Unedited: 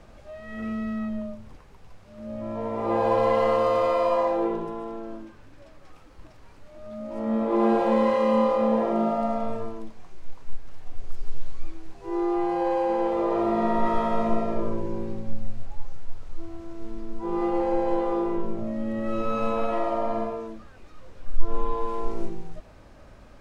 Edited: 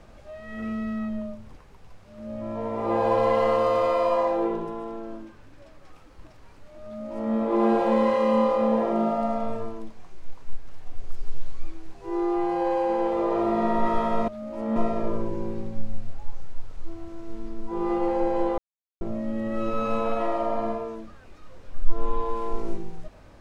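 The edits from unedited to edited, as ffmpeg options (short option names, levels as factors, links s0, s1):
-filter_complex "[0:a]asplit=5[s0][s1][s2][s3][s4];[s0]atrim=end=14.282[s5];[s1]atrim=start=6.858:end=7.342[s6];[s2]atrim=start=14.278:end=18.1,asetpts=PTS-STARTPTS,afade=t=out:st=3.818:d=0.004:c=hsin[s7];[s3]atrim=start=18.1:end=18.53,asetpts=PTS-STARTPTS,volume=0[s8];[s4]atrim=start=18.53,asetpts=PTS-STARTPTS,afade=t=in:d=0.004:c=hsin[s9];[s5][s6]acrossfade=d=0.004:c1=hsin:c2=hsin[s10];[s7][s8][s9]concat=n=3:v=0:a=1[s11];[s10][s11]acrossfade=d=0.004:c1=hsin:c2=hsin"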